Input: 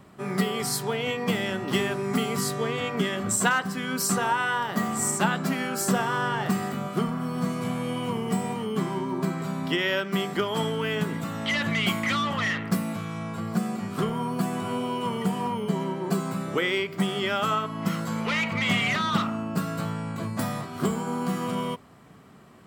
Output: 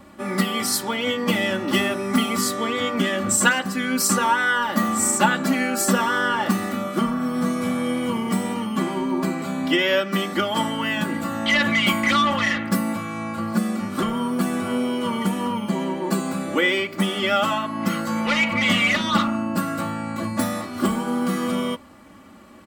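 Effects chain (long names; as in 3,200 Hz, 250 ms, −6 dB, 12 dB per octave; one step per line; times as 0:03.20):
comb filter 3.5 ms, depth 97%
level +3 dB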